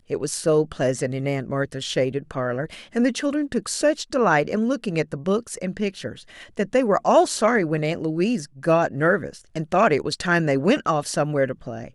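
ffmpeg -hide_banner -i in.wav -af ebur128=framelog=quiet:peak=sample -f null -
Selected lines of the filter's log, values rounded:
Integrated loudness:
  I:         -22.4 LUFS
  Threshold: -32.7 LUFS
Loudness range:
  LRA:         3.1 LU
  Threshold: -42.6 LUFS
  LRA low:   -24.2 LUFS
  LRA high:  -21.2 LUFS
Sample peak:
  Peak:       -5.8 dBFS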